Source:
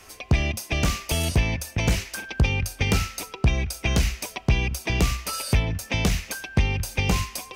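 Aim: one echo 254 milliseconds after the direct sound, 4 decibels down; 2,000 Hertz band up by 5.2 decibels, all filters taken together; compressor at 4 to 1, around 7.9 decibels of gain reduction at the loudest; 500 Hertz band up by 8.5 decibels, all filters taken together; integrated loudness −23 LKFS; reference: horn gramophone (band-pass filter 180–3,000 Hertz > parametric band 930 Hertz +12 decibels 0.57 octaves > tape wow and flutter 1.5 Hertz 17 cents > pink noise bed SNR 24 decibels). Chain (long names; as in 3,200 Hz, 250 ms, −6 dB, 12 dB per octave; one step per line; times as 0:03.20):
parametric band 500 Hz +8.5 dB
parametric band 2,000 Hz +7 dB
downward compressor 4 to 1, threshold −23 dBFS
band-pass filter 180–3,000 Hz
parametric band 930 Hz +12 dB 0.57 octaves
single-tap delay 254 ms −4 dB
tape wow and flutter 1.5 Hz 17 cents
pink noise bed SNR 24 dB
level +4 dB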